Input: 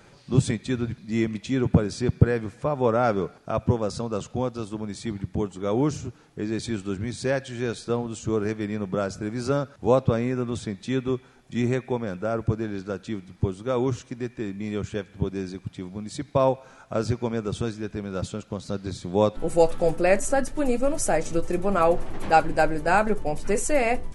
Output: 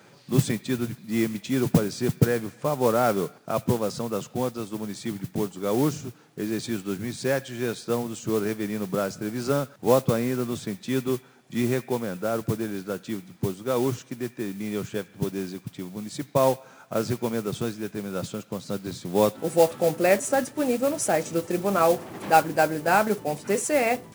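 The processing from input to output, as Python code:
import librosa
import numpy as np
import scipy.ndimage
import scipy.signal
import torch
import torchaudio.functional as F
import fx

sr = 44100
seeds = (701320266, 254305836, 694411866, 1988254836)

y = scipy.signal.sosfilt(scipy.signal.butter(4, 120.0, 'highpass', fs=sr, output='sos'), x)
y = fx.mod_noise(y, sr, seeds[0], snr_db=17)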